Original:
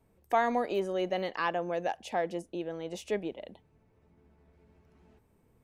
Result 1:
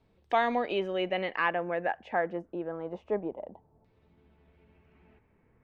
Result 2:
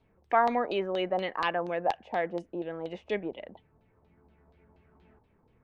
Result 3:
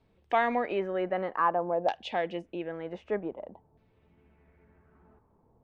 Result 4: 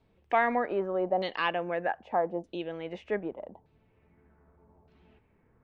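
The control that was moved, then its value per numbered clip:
auto-filter low-pass, speed: 0.26, 4.2, 0.53, 0.82 Hertz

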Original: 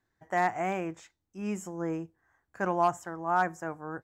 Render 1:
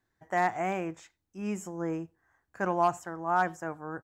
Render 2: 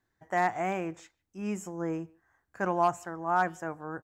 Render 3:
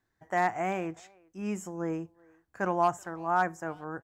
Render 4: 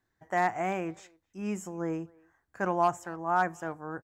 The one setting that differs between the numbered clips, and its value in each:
far-end echo of a speakerphone, delay time: 90, 150, 380, 260 milliseconds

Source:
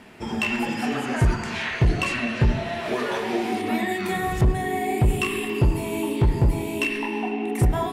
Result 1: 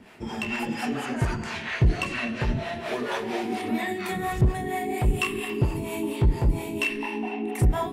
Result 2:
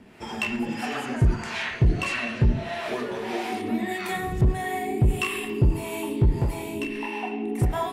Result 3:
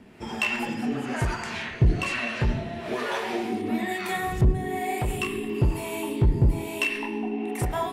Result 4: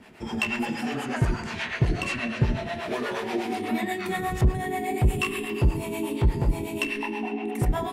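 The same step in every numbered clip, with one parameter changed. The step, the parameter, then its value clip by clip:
two-band tremolo in antiphase, speed: 4.3, 1.6, 1.1, 8.3 Hertz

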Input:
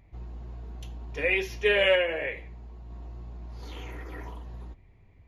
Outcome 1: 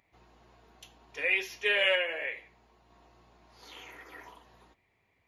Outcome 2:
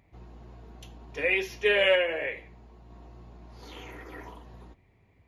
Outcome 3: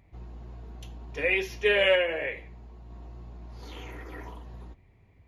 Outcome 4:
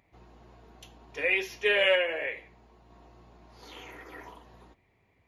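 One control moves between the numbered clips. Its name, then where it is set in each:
high-pass filter, corner frequency: 1,200, 160, 61, 470 Hertz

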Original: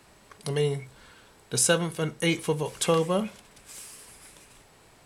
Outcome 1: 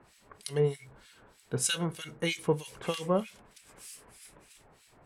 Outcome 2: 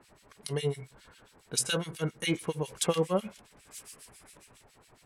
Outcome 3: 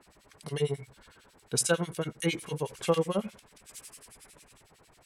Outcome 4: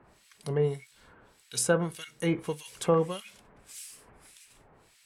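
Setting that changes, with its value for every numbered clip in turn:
two-band tremolo in antiphase, speed: 3.2, 7.3, 11, 1.7 Hertz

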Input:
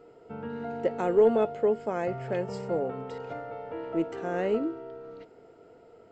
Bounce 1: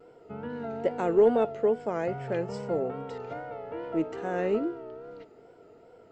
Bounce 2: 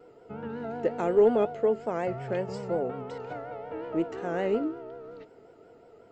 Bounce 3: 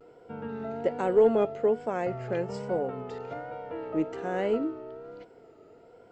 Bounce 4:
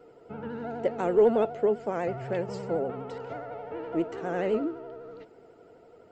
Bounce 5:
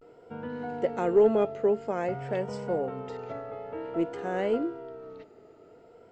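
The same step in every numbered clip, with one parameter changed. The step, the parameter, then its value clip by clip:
pitch vibrato, speed: 2.4, 5.5, 1.2, 12, 0.51 Hertz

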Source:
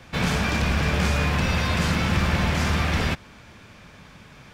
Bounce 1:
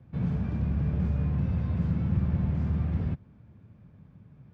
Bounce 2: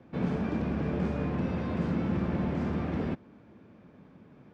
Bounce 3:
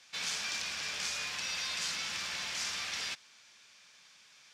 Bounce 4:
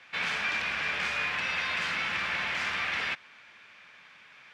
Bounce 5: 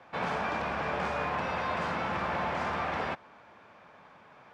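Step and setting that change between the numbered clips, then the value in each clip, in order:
resonant band-pass, frequency: 120, 290, 5,900, 2,200, 830 Hertz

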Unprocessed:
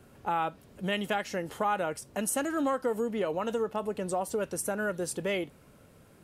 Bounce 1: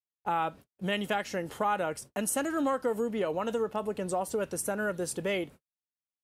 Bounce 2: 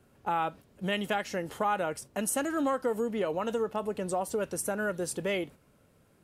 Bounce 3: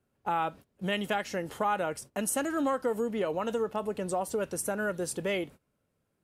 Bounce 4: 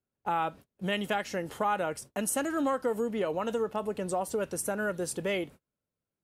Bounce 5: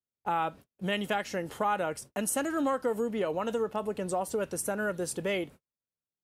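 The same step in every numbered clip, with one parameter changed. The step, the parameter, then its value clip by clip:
noise gate, range: −59, −7, −21, −34, −47 decibels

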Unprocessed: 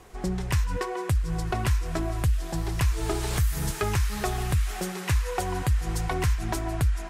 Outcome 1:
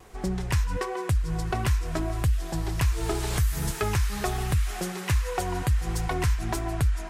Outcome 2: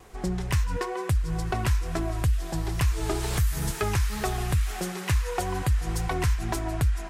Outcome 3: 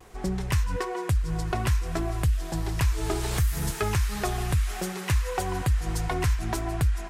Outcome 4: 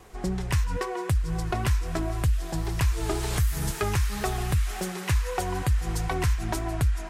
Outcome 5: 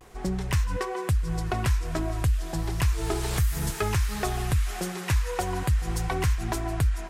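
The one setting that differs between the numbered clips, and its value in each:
pitch vibrato, speed: 1.4, 2.2, 0.62, 3.8, 0.36 Hertz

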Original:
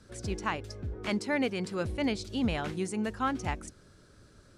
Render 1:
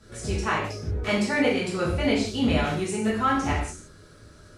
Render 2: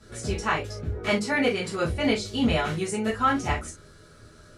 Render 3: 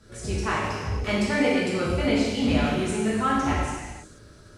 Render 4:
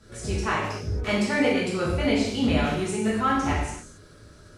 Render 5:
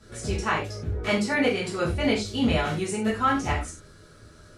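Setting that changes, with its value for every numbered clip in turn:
reverb whose tail is shaped and stops, gate: 210, 90, 520, 310, 130 milliseconds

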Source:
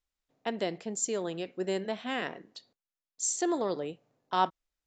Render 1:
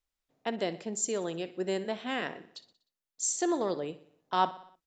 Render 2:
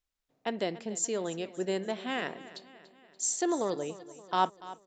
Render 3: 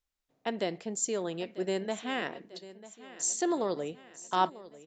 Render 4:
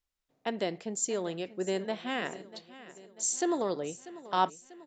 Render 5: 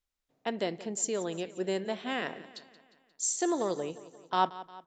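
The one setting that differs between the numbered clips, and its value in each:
repeating echo, delay time: 61, 288, 944, 642, 177 milliseconds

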